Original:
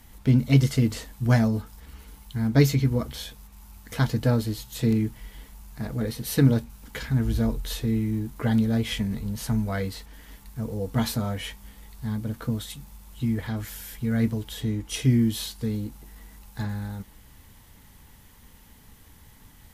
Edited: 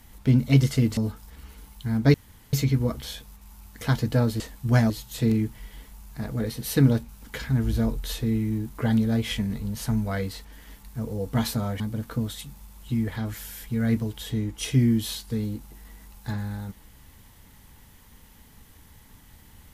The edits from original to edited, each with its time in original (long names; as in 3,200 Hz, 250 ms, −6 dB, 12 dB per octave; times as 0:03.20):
0:00.97–0:01.47: move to 0:04.51
0:02.64: splice in room tone 0.39 s
0:11.41–0:12.11: remove